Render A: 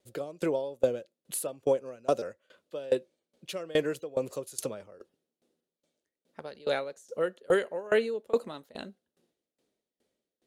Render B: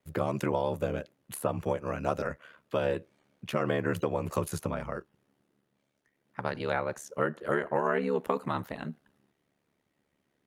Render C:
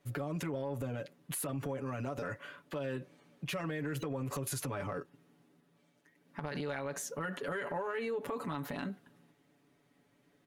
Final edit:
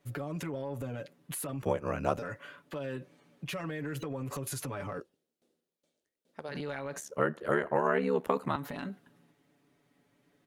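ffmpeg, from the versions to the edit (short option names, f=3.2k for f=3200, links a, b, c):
-filter_complex "[1:a]asplit=2[a][b];[2:a]asplit=4[c][d][e][f];[c]atrim=end=1.622[g];[a]atrim=start=1.618:end=2.172[h];[d]atrim=start=2.168:end=5.002[i];[0:a]atrim=start=4.998:end=6.492[j];[e]atrim=start=6.488:end=7.002[k];[b]atrim=start=6.998:end=8.562[l];[f]atrim=start=8.558[m];[g][h]acrossfade=d=0.004:c1=hsin:c2=hsin[n];[n][i]acrossfade=d=0.004:c1=hsin:c2=hsin[o];[o][j]acrossfade=d=0.004:c1=hsin:c2=hsin[p];[p][k]acrossfade=d=0.004:c1=hsin:c2=hsin[q];[q][l]acrossfade=d=0.004:c1=hsin:c2=hsin[r];[r][m]acrossfade=d=0.004:c1=hsin:c2=hsin"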